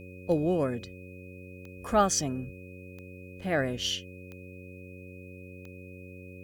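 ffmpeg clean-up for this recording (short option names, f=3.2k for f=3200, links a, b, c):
-af "adeclick=t=4,bandreject=f=91.8:t=h:w=4,bandreject=f=183.6:t=h:w=4,bandreject=f=275.4:t=h:w=4,bandreject=f=367.2:t=h:w=4,bandreject=f=459:t=h:w=4,bandreject=f=550.8:t=h:w=4,bandreject=f=2.5k:w=30,agate=range=-21dB:threshold=-38dB"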